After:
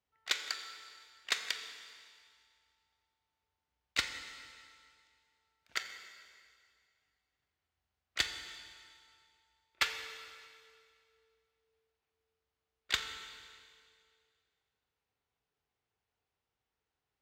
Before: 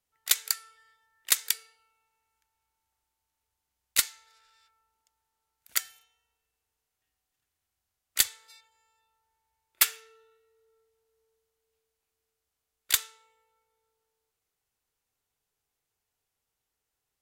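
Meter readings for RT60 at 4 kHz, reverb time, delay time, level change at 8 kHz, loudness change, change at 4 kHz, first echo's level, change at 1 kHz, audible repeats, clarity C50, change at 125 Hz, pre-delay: 2.1 s, 2.1 s, no echo, -16.0 dB, -10.0 dB, -4.5 dB, no echo, -0.5 dB, no echo, 8.0 dB, no reading, 25 ms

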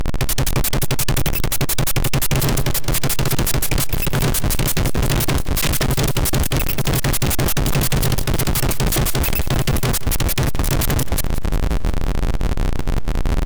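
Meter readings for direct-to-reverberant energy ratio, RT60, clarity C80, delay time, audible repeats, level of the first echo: no reverb, no reverb, no reverb, 177 ms, 5, -15.0 dB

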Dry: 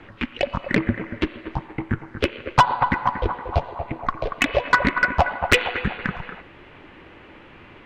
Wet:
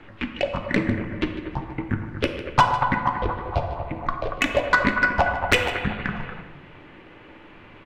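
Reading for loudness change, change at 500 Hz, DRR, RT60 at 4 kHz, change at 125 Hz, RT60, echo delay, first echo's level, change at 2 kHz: -1.0 dB, -0.5 dB, 5.5 dB, 0.50 s, -0.5 dB, 1.1 s, 151 ms, -15.0 dB, -0.5 dB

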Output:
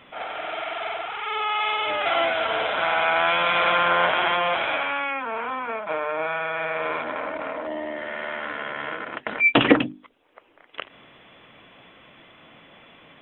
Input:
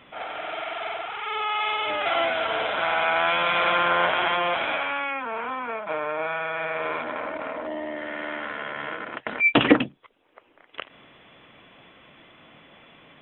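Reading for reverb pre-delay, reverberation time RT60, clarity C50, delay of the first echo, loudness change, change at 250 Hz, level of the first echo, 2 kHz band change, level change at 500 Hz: no reverb, no reverb, no reverb, no echo, +1.5 dB, 0.0 dB, no echo, +1.5 dB, +1.5 dB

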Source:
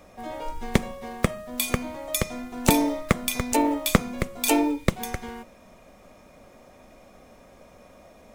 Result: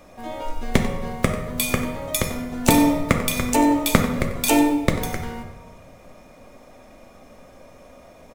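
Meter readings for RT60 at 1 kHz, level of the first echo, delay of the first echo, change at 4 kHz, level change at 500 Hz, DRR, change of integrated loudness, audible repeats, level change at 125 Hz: 1.2 s, -13.0 dB, 93 ms, +3.0 dB, +3.5 dB, 3.5 dB, +4.0 dB, 1, +4.5 dB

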